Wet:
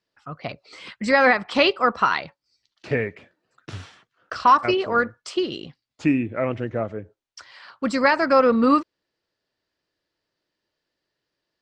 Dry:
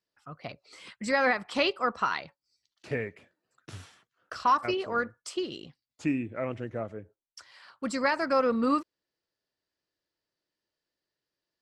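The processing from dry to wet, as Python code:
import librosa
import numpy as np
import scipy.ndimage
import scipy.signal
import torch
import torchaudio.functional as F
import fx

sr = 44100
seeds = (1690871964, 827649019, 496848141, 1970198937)

y = scipy.signal.sosfilt(scipy.signal.butter(2, 5300.0, 'lowpass', fs=sr, output='sos'), x)
y = y * librosa.db_to_amplitude(8.5)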